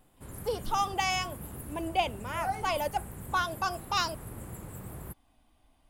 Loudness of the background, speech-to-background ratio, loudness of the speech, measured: -43.5 LUFS, 11.5 dB, -32.0 LUFS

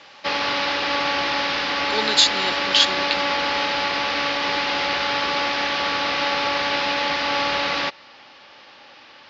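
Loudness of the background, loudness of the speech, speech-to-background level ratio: -21.5 LUFS, -20.0 LUFS, 1.5 dB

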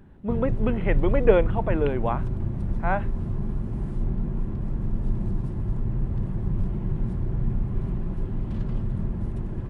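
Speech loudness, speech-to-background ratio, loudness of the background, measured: -26.0 LUFS, 4.0 dB, -30.0 LUFS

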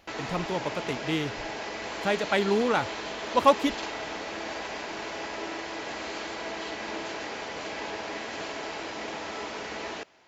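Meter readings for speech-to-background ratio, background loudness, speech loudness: 7.5 dB, -35.0 LUFS, -27.5 LUFS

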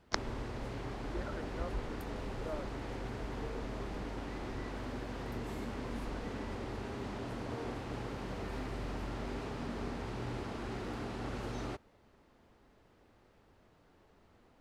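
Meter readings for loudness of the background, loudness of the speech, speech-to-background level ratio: -41.5 LUFS, -46.0 LUFS, -4.5 dB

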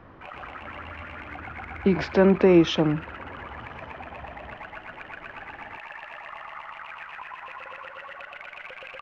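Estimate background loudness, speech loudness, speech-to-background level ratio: -39.5 LUFS, -21.0 LUFS, 18.5 dB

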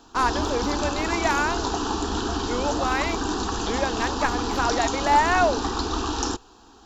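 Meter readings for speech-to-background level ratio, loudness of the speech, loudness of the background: 1.5 dB, -25.5 LUFS, -27.0 LUFS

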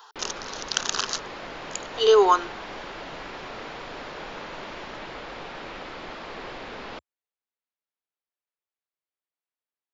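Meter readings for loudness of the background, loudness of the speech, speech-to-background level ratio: -37.5 LUFS, -23.5 LUFS, 14.0 dB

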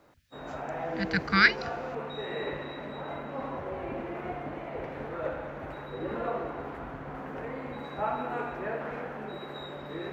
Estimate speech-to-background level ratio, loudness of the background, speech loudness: 12.0 dB, -36.5 LUFS, -24.5 LUFS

